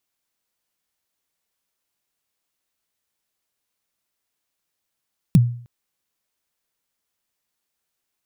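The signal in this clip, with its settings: kick drum length 0.31 s, from 200 Hz, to 120 Hz, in 32 ms, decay 0.50 s, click on, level -6 dB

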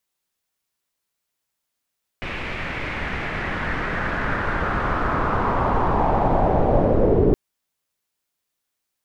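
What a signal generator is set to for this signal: swept filtered noise pink, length 5.12 s lowpass, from 2400 Hz, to 400 Hz, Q 2.7, linear, gain ramp +14.5 dB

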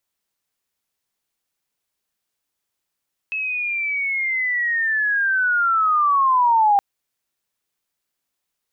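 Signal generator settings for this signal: chirp linear 2600 Hz -> 790 Hz -22 dBFS -> -12 dBFS 3.47 s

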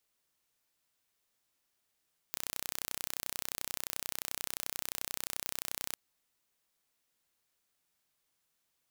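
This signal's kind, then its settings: pulse train 31.4/s, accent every 0, -9 dBFS 3.60 s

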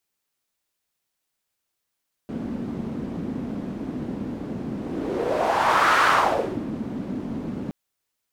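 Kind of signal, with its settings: whoosh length 5.42 s, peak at 3.75, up 1.41 s, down 0.66 s, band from 240 Hz, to 1300 Hz, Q 2.8, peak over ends 13 dB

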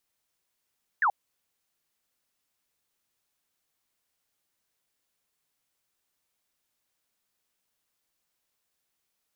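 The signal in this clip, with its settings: laser zap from 1900 Hz, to 730 Hz, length 0.08 s sine, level -20 dB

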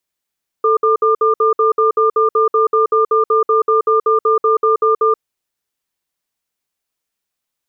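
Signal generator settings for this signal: cadence 441 Hz, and 1200 Hz, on 0.13 s, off 0.06 s, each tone -12.5 dBFS 4.56 s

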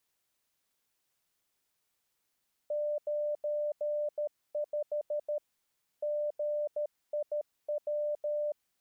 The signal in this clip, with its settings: Morse "95 GIW" 13 wpm 594 Hz -29.5 dBFS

